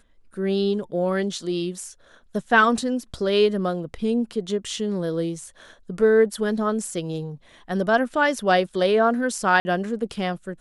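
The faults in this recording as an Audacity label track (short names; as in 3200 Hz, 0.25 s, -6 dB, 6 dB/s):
9.600000	9.650000	gap 50 ms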